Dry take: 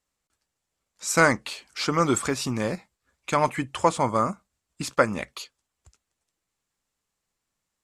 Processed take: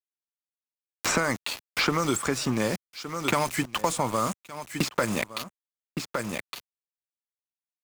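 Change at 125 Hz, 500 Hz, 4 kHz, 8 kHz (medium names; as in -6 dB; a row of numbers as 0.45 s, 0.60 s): -1.5 dB, -4.0 dB, +2.5 dB, 0.0 dB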